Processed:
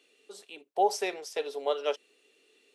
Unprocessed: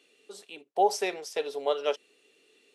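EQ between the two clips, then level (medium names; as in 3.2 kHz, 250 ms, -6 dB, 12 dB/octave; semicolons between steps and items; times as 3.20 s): high-pass 210 Hz 12 dB/octave; -1.5 dB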